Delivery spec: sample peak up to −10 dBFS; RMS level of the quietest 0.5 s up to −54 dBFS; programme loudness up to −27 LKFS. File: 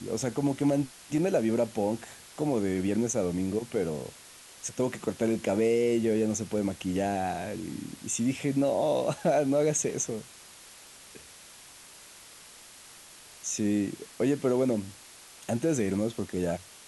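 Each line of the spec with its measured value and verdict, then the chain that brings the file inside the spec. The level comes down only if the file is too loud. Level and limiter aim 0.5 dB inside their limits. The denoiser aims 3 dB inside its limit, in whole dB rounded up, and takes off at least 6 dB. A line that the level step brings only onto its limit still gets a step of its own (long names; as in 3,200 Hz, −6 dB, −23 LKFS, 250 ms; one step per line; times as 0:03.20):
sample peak −14.5 dBFS: in spec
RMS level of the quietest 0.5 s −51 dBFS: out of spec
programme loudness −29.0 LKFS: in spec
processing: broadband denoise 6 dB, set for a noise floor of −51 dBFS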